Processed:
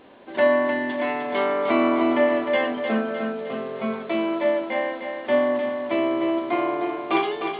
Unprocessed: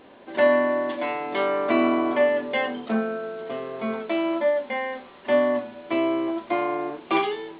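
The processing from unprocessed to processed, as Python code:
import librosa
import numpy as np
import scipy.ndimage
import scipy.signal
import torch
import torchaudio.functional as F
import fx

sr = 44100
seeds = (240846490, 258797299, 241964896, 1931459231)

y = x + fx.echo_feedback(x, sr, ms=305, feedback_pct=51, wet_db=-6.5, dry=0)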